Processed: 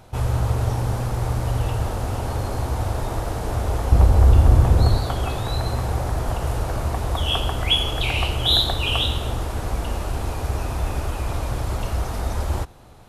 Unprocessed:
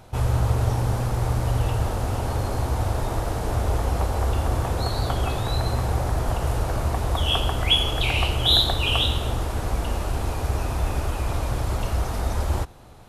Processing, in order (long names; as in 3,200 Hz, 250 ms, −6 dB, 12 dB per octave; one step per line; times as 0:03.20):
0:03.92–0:04.98: low-shelf EQ 290 Hz +11.5 dB